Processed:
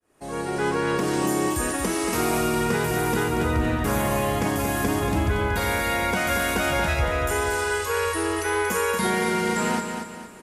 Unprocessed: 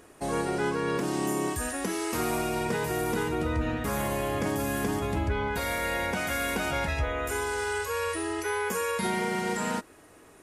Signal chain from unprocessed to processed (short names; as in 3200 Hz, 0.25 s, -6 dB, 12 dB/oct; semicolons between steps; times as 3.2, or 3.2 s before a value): opening faded in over 0.73 s; feedback echo 0.232 s, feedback 40%, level -6.5 dB; gain +5 dB